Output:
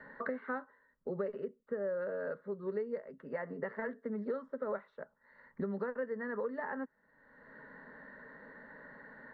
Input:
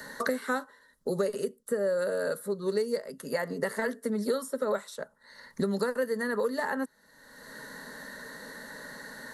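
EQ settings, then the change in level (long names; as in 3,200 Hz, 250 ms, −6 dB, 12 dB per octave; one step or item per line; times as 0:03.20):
low-pass filter 2,100 Hz 24 dB per octave
−8.0 dB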